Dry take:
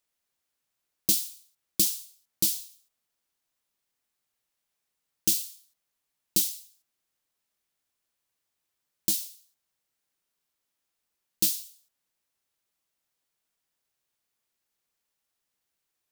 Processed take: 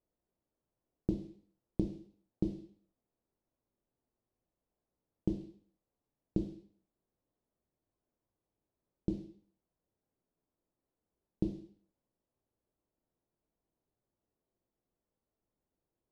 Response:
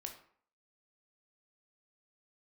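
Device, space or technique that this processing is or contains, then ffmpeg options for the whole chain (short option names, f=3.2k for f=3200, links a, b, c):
television next door: -filter_complex "[0:a]acompressor=threshold=-24dB:ratio=6,lowpass=480[a];[1:a]atrim=start_sample=2205[b];[a][b]afir=irnorm=-1:irlink=0,volume=11.5dB"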